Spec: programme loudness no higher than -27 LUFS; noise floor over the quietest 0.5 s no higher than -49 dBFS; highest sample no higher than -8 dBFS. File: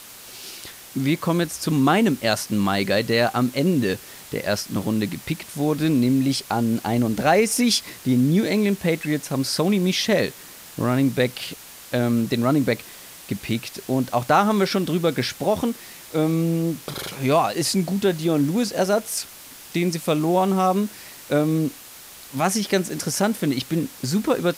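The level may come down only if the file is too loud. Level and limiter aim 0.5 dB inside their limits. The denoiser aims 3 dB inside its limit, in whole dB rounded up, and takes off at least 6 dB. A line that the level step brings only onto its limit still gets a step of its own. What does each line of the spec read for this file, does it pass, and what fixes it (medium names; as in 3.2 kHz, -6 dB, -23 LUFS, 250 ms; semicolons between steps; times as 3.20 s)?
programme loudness -22.0 LUFS: fail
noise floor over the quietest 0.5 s -43 dBFS: fail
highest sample -6.0 dBFS: fail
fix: noise reduction 6 dB, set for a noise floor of -43 dBFS; trim -5.5 dB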